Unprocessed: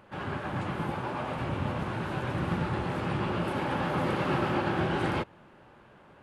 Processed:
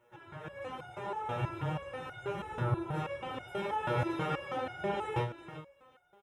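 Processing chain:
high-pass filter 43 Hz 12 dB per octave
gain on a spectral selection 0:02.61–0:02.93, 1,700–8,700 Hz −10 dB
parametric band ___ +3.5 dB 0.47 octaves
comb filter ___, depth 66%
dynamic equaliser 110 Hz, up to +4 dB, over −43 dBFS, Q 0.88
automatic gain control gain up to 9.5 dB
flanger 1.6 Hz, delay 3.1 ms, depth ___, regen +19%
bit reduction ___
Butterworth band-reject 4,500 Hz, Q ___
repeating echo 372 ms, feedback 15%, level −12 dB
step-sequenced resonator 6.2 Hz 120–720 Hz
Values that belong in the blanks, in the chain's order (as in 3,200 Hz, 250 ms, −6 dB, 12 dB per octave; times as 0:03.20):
640 Hz, 2.2 ms, 5.7 ms, 12 bits, 5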